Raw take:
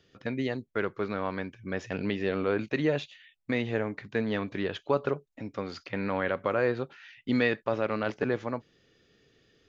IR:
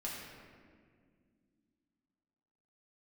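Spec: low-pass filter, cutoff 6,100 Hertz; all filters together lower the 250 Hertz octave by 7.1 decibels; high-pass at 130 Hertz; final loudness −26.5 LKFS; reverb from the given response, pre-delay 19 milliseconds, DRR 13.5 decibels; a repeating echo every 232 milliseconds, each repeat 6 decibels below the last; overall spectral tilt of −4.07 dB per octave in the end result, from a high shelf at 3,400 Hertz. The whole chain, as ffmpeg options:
-filter_complex "[0:a]highpass=130,lowpass=6100,equalizer=frequency=250:width_type=o:gain=-8.5,highshelf=frequency=3400:gain=-5,aecho=1:1:232|464|696|928|1160|1392:0.501|0.251|0.125|0.0626|0.0313|0.0157,asplit=2[link_01][link_02];[1:a]atrim=start_sample=2205,adelay=19[link_03];[link_02][link_03]afir=irnorm=-1:irlink=0,volume=-14.5dB[link_04];[link_01][link_04]amix=inputs=2:normalize=0,volume=6dB"

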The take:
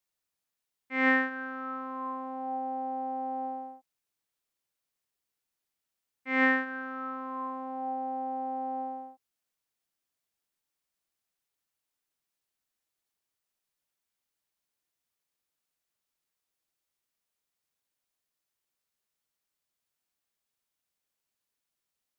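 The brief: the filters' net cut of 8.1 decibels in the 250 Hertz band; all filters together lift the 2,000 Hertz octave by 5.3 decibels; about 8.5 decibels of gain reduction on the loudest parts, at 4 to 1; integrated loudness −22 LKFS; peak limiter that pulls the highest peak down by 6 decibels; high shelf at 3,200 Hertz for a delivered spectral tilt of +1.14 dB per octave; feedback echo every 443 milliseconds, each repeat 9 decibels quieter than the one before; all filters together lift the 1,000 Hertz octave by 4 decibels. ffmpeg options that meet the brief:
ffmpeg -i in.wav -af "equalizer=frequency=250:width_type=o:gain=-8.5,equalizer=frequency=1000:width_type=o:gain=5.5,equalizer=frequency=2000:width_type=o:gain=7,highshelf=frequency=3200:gain=-9,acompressor=threshold=-26dB:ratio=4,alimiter=limit=-23.5dB:level=0:latency=1,aecho=1:1:443|886|1329|1772:0.355|0.124|0.0435|0.0152,volume=11.5dB" out.wav

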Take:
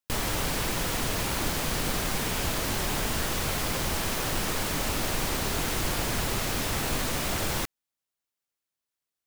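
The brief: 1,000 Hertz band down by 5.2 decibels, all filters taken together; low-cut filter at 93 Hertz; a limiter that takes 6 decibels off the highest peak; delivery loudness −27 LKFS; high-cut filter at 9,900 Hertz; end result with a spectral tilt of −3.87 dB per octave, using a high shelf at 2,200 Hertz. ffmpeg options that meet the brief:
ffmpeg -i in.wav -af "highpass=93,lowpass=9900,equalizer=frequency=1000:width_type=o:gain=-5.5,highshelf=frequency=2200:gain=-6,volume=8dB,alimiter=limit=-18dB:level=0:latency=1" out.wav

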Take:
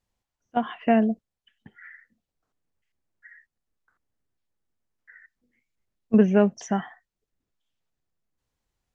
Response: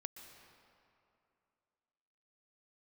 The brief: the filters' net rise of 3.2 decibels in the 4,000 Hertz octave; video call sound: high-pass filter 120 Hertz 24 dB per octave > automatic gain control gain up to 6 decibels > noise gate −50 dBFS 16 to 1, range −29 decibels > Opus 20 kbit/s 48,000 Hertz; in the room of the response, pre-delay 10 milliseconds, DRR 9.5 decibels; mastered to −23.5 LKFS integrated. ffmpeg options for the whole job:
-filter_complex "[0:a]equalizer=frequency=4000:width_type=o:gain=5.5,asplit=2[link_01][link_02];[1:a]atrim=start_sample=2205,adelay=10[link_03];[link_02][link_03]afir=irnorm=-1:irlink=0,volume=-5.5dB[link_04];[link_01][link_04]amix=inputs=2:normalize=0,highpass=frequency=120:width=0.5412,highpass=frequency=120:width=1.3066,dynaudnorm=maxgain=6dB,agate=range=-29dB:threshold=-50dB:ratio=16,volume=-1.5dB" -ar 48000 -c:a libopus -b:a 20k

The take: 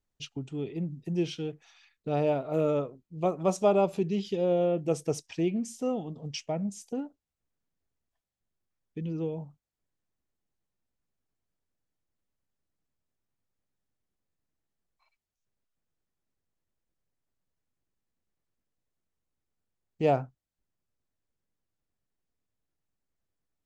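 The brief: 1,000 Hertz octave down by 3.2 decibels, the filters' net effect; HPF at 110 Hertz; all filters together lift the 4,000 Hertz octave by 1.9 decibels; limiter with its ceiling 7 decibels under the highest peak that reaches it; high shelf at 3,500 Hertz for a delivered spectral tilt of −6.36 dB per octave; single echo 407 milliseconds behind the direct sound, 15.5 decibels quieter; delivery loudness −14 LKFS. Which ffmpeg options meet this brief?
ffmpeg -i in.wav -af "highpass=110,equalizer=frequency=1000:width_type=o:gain=-5,highshelf=frequency=3500:gain=-6,equalizer=frequency=4000:width_type=o:gain=7.5,alimiter=limit=-21dB:level=0:latency=1,aecho=1:1:407:0.168,volume=19.5dB" out.wav

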